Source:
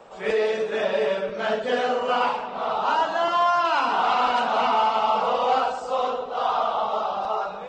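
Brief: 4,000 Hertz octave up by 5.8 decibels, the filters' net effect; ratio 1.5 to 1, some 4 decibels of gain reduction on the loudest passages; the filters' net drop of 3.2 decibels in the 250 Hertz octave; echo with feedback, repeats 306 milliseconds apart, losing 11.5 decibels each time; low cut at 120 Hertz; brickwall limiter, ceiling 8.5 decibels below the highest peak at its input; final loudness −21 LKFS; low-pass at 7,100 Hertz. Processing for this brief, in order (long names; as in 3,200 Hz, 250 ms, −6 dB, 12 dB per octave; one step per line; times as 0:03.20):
high-pass filter 120 Hz
low-pass filter 7,100 Hz
parametric band 250 Hz −3.5 dB
parametric band 4,000 Hz +8.5 dB
downward compressor 1.5 to 1, threshold −28 dBFS
brickwall limiter −21.5 dBFS
repeating echo 306 ms, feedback 27%, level −11.5 dB
level +8.5 dB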